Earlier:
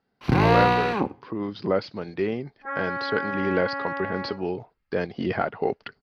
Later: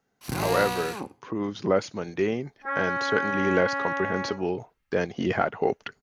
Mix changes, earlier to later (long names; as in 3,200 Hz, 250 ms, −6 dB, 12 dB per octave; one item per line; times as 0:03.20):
speech: remove low-pass with resonance 4,800 Hz, resonance Q 7.3
first sound −11.5 dB
master: remove high-frequency loss of the air 330 metres